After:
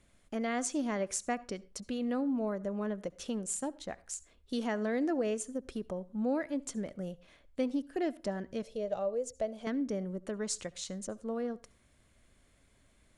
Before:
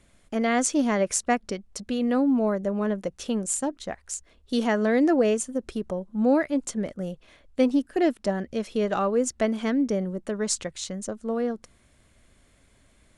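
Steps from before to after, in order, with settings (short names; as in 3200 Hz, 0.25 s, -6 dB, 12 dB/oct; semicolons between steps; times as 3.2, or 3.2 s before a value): 8.62–9.67 EQ curve 150 Hz 0 dB, 290 Hz -15 dB, 590 Hz +6 dB, 930 Hz -9 dB, 1400 Hz -13 dB, 4200 Hz -5 dB; compressor 1.5:1, threshold -29 dBFS, peak gain reduction 5 dB; on a send: reverb RT60 0.35 s, pre-delay 64 ms, DRR 21 dB; on the sum: gain -6.5 dB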